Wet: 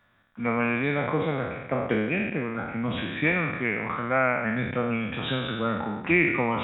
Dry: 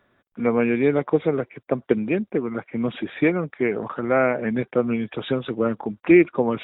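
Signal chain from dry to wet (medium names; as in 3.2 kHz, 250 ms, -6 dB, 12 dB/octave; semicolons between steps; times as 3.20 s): spectral sustain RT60 1.15 s; peaking EQ 390 Hz -13.5 dB 1.2 oct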